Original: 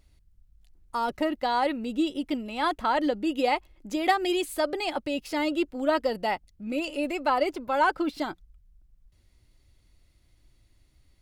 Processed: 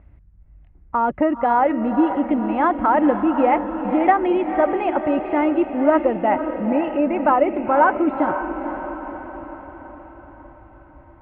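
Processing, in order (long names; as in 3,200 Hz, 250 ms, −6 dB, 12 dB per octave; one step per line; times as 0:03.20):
Bessel low-pass filter 1,300 Hz, order 8
in parallel at +2 dB: downward compressor, threshold −37 dBFS, peak gain reduction 16.5 dB
on the sum: high-pass filter 42 Hz
parametric band 420 Hz −5 dB 0.42 octaves
feedback delay with all-pass diffusion 502 ms, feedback 55%, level −8.5 dB
level +7.5 dB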